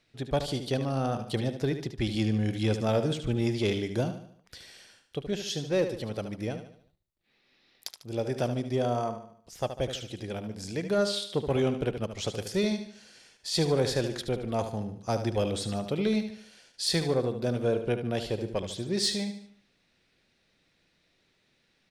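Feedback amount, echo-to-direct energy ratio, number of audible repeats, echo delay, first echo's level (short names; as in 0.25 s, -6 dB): 44%, -8.5 dB, 4, 74 ms, -9.5 dB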